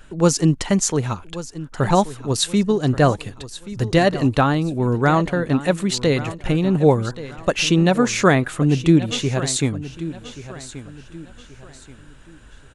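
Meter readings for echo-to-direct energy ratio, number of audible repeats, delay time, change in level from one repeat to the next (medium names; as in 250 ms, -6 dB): -14.5 dB, 3, 1130 ms, -9.0 dB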